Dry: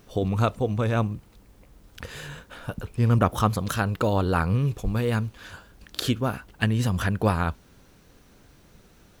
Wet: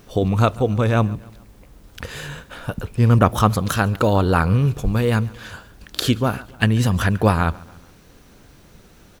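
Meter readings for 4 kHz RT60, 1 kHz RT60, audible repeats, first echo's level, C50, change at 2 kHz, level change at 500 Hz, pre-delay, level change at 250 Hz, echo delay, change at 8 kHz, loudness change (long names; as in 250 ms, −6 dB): no reverb audible, no reverb audible, 3, −22.5 dB, no reverb audible, +6.0 dB, +6.0 dB, no reverb audible, +6.0 dB, 141 ms, +6.0 dB, +6.0 dB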